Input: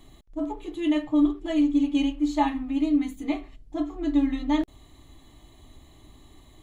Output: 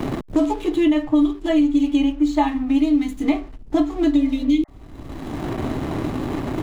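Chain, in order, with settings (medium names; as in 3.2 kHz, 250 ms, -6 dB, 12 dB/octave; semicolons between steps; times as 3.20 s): hysteresis with a dead band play -48.5 dBFS; spectral replace 4.19–4.76 s, 570–2100 Hz both; three bands compressed up and down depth 100%; trim +6 dB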